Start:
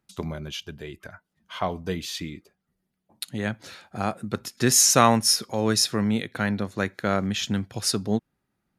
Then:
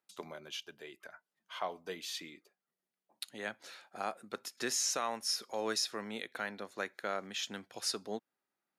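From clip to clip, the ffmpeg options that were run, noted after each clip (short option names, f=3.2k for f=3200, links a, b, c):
-filter_complex "[0:a]acrossover=split=6600[a][b];[b]acompressor=threshold=-31dB:ratio=4:attack=1:release=60[c];[a][c]amix=inputs=2:normalize=0,highpass=440,alimiter=limit=-15dB:level=0:latency=1:release=496,volume=-7.5dB"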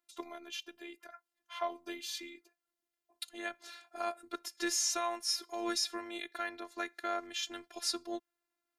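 -af "afftfilt=real='hypot(re,im)*cos(PI*b)':imag='0':win_size=512:overlap=0.75,volume=4dB"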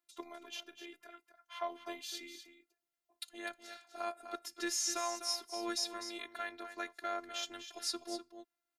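-af "aecho=1:1:251:0.316,volume=-3dB"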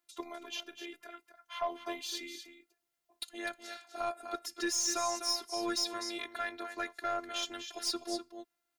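-af "aeval=exprs='(tanh(22.4*val(0)+0.15)-tanh(0.15))/22.4':c=same,volume=5.5dB"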